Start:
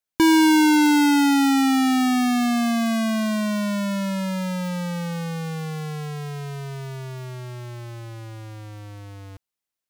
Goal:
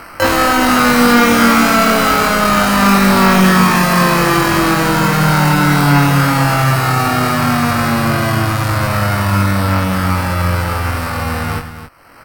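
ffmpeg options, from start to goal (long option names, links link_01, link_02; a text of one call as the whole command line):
ffmpeg -i in.wav -filter_complex "[0:a]asplit=4[link_01][link_02][link_03][link_04];[link_02]asetrate=37084,aresample=44100,atempo=1.18921,volume=-11dB[link_05];[link_03]asetrate=55563,aresample=44100,atempo=0.793701,volume=-7dB[link_06];[link_04]asetrate=88200,aresample=44100,atempo=0.5,volume=-3dB[link_07];[link_01][link_05][link_06][link_07]amix=inputs=4:normalize=0,tiltshelf=frequency=970:gain=-4.5,asplit=2[link_08][link_09];[link_09]acompressor=mode=upward:threshold=-20dB:ratio=2.5,volume=3dB[link_10];[link_08][link_10]amix=inputs=2:normalize=0,alimiter=limit=-4.5dB:level=0:latency=1,acrusher=samples=10:mix=1:aa=0.000001,equalizer=frequency=500:width_type=o:width=0.33:gain=-8,equalizer=frequency=1600:width_type=o:width=0.33:gain=7,equalizer=frequency=8000:width_type=o:width=0.33:gain=-11,asetrate=35633,aresample=44100,asoftclip=type=hard:threshold=-17dB,asplit=2[link_11][link_12];[link_12]adelay=21,volume=-3dB[link_13];[link_11][link_13]amix=inputs=2:normalize=0,asplit=2[link_14][link_15];[link_15]aecho=0:1:91|269:0.237|0.266[link_16];[link_14][link_16]amix=inputs=2:normalize=0,volume=6dB" out.wav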